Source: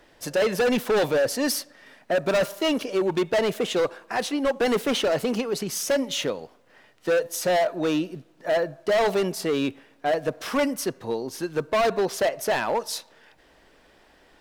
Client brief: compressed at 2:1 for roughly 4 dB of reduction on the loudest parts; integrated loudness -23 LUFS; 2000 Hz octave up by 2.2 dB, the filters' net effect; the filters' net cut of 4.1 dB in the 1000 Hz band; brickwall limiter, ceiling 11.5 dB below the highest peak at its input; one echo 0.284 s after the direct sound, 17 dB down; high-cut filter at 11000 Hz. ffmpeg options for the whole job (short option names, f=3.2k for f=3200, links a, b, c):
-af "lowpass=11k,equalizer=f=1k:t=o:g=-7.5,equalizer=f=2k:t=o:g=5,acompressor=threshold=-27dB:ratio=2,alimiter=level_in=6dB:limit=-24dB:level=0:latency=1,volume=-6dB,aecho=1:1:284:0.141,volume=14dB"